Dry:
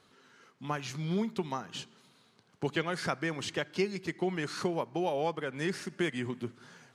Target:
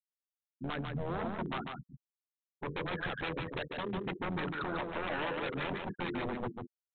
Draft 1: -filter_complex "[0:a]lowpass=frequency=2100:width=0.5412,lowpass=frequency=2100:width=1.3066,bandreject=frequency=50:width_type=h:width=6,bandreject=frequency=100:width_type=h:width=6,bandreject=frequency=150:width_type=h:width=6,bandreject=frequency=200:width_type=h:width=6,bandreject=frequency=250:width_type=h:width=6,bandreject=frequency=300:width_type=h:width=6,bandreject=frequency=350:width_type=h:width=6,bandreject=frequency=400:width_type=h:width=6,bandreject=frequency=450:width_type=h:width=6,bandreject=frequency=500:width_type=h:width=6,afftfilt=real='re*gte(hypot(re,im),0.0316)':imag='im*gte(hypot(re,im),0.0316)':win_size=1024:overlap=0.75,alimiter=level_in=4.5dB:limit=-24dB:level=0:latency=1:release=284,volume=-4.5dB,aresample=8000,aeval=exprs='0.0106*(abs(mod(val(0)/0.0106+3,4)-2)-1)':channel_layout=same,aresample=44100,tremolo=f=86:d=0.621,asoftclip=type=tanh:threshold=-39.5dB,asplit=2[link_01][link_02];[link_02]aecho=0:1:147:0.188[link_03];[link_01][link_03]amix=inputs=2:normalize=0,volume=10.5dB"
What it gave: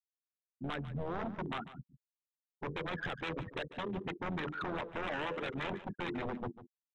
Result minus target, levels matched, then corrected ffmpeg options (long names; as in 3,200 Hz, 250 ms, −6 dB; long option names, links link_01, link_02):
soft clipping: distortion +19 dB; echo-to-direct −10 dB
-filter_complex "[0:a]lowpass=frequency=2100:width=0.5412,lowpass=frequency=2100:width=1.3066,bandreject=frequency=50:width_type=h:width=6,bandreject=frequency=100:width_type=h:width=6,bandreject=frequency=150:width_type=h:width=6,bandreject=frequency=200:width_type=h:width=6,bandreject=frequency=250:width_type=h:width=6,bandreject=frequency=300:width_type=h:width=6,bandreject=frequency=350:width_type=h:width=6,bandreject=frequency=400:width_type=h:width=6,bandreject=frequency=450:width_type=h:width=6,bandreject=frequency=500:width_type=h:width=6,afftfilt=real='re*gte(hypot(re,im),0.0316)':imag='im*gte(hypot(re,im),0.0316)':win_size=1024:overlap=0.75,alimiter=level_in=4.5dB:limit=-24dB:level=0:latency=1:release=284,volume=-4.5dB,aresample=8000,aeval=exprs='0.0106*(abs(mod(val(0)/0.0106+3,4)-2)-1)':channel_layout=same,aresample=44100,tremolo=f=86:d=0.621,asoftclip=type=tanh:threshold=-29dB,asplit=2[link_01][link_02];[link_02]aecho=0:1:147:0.596[link_03];[link_01][link_03]amix=inputs=2:normalize=0,volume=10.5dB"